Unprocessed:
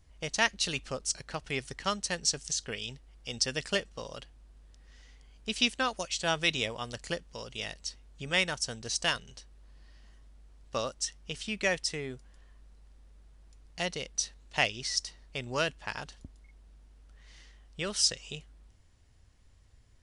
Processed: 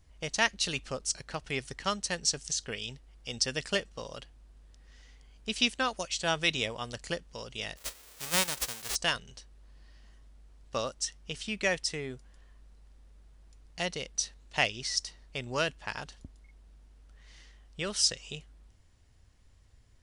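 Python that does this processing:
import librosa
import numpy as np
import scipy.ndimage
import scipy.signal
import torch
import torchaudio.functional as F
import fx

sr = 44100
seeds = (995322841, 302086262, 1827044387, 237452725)

y = fx.envelope_flatten(x, sr, power=0.1, at=(7.76, 8.94), fade=0.02)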